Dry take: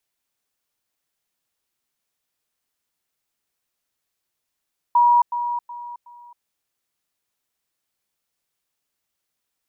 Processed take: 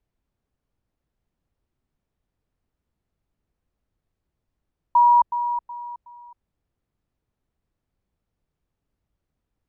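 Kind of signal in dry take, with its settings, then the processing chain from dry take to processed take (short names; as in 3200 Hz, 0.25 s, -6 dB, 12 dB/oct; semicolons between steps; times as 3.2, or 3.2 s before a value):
level ladder 960 Hz -11.5 dBFS, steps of -10 dB, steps 4, 0.27 s 0.10 s
tilt -5.5 dB/oct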